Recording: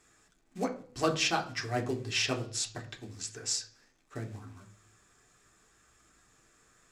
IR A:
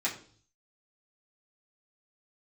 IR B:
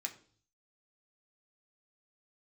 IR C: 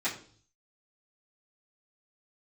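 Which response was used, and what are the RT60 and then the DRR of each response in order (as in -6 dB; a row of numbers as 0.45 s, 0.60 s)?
B; 0.50 s, 0.50 s, 0.50 s; -7.5 dB, 1.5 dB, -13.5 dB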